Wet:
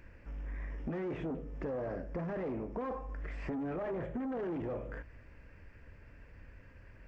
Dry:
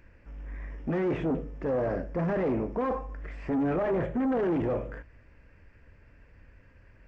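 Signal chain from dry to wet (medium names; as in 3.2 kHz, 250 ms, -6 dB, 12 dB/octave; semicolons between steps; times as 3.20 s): compression 4:1, threshold -38 dBFS, peak gain reduction 11.5 dB; trim +1 dB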